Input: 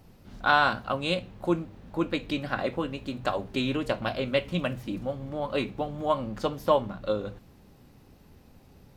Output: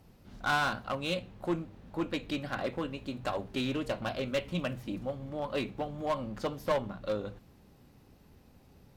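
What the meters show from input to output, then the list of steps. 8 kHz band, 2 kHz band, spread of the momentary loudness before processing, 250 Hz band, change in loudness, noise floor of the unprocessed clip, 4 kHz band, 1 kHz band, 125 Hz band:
can't be measured, −6.0 dB, 9 LU, −4.5 dB, −5.5 dB, −55 dBFS, −5.0 dB, −7.0 dB, −4.5 dB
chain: harmonic generator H 6 −24 dB, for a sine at −7.5 dBFS
asymmetric clip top −22 dBFS
level −4 dB

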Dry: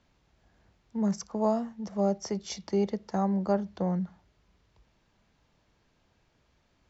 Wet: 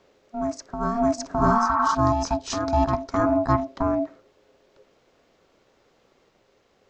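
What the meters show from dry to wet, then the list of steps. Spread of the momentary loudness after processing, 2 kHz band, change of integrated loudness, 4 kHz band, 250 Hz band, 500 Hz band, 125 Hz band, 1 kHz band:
10 LU, +17.0 dB, +7.0 dB, +6.5 dB, +4.5 dB, +5.5 dB, +6.5 dB, +14.0 dB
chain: ring modulation 470 Hz
backwards echo 611 ms −5.5 dB
healed spectral selection 0:01.50–0:01.92, 770–2,800 Hz before
level +8.5 dB

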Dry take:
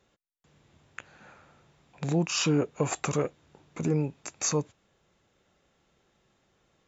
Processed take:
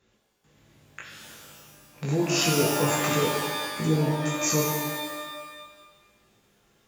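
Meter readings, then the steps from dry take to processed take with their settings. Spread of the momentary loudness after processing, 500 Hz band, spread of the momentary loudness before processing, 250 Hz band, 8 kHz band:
21 LU, +4.5 dB, 22 LU, +3.0 dB, can't be measured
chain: parametric band 790 Hz −5 dB 0.77 octaves
chorus effect 1.6 Hz, delay 18 ms, depth 2.2 ms
reverb with rising layers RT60 1.3 s, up +12 semitones, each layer −2 dB, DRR −1 dB
level +3.5 dB

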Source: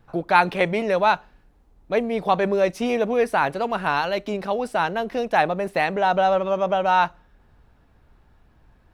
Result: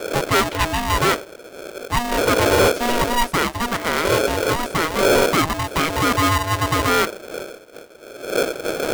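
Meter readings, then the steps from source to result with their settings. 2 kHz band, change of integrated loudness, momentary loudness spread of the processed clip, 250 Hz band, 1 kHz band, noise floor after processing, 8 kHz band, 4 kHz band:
+4.0 dB, +3.0 dB, 15 LU, +4.5 dB, +0.5 dB, −42 dBFS, can't be measured, +11.0 dB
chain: wind on the microphone 120 Hz −23 dBFS
gain into a clipping stage and back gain 13.5 dB
ring modulator with a square carrier 480 Hz
level +1.5 dB

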